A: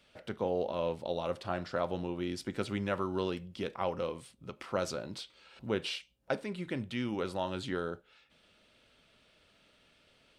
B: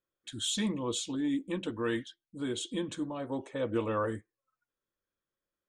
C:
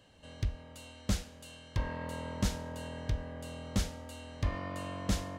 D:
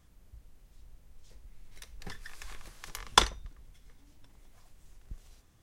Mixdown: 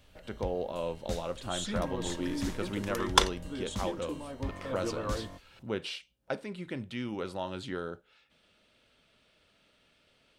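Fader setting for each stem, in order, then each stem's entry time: -1.5 dB, -5.0 dB, -6.0 dB, -1.0 dB; 0.00 s, 1.10 s, 0.00 s, 0.00 s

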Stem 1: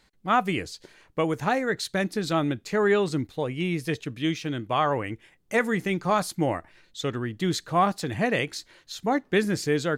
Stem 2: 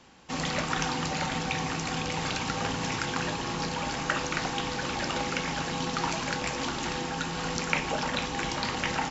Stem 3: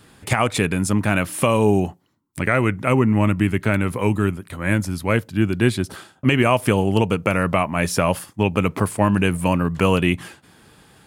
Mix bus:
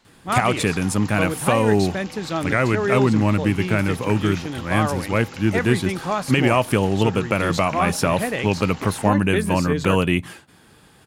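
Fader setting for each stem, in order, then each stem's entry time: -0.5 dB, -8.0 dB, -1.0 dB; 0.00 s, 0.00 s, 0.05 s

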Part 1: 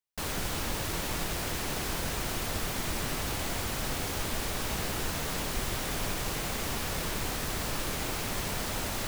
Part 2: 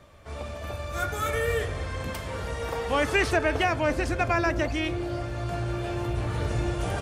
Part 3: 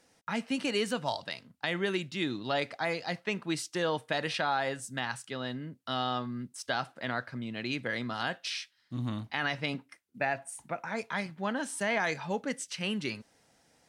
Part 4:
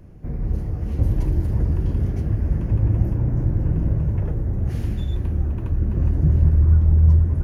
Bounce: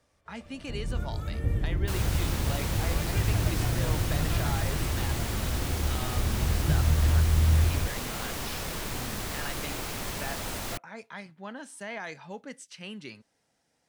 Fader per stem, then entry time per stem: -1.5 dB, -18.5 dB, -8.0 dB, -8.0 dB; 1.70 s, 0.00 s, 0.00 s, 0.45 s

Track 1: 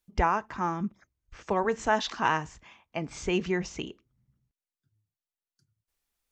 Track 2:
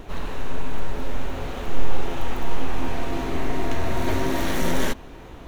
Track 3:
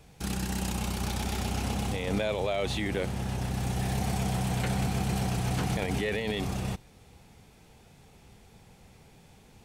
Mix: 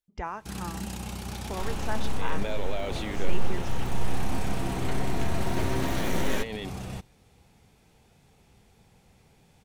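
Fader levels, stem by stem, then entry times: -10.0 dB, -5.5 dB, -4.5 dB; 0.00 s, 1.50 s, 0.25 s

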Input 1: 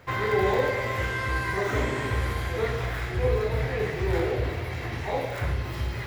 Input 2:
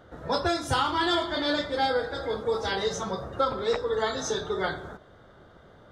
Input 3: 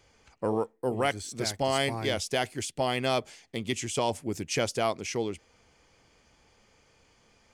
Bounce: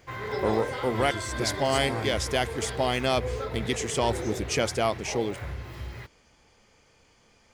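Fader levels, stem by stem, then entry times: -8.0 dB, -13.0 dB, +2.0 dB; 0.00 s, 0.00 s, 0.00 s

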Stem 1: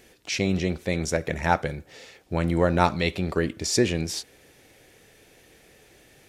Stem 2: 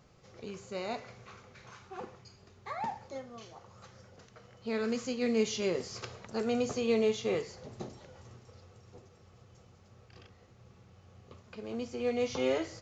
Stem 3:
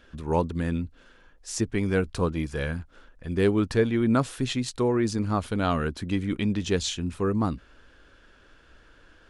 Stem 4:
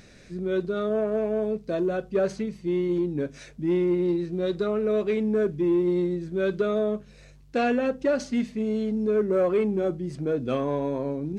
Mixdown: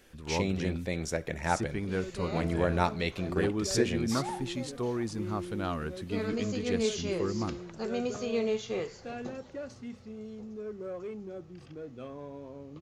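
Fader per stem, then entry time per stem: -7.0 dB, -2.0 dB, -8.5 dB, -16.5 dB; 0.00 s, 1.45 s, 0.00 s, 1.50 s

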